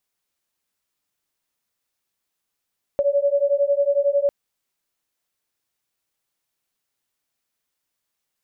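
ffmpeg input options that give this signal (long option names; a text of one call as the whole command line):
ffmpeg -f lavfi -i "aevalsrc='0.106*(sin(2*PI*561*t)+sin(2*PI*572*t))':duration=1.3:sample_rate=44100" out.wav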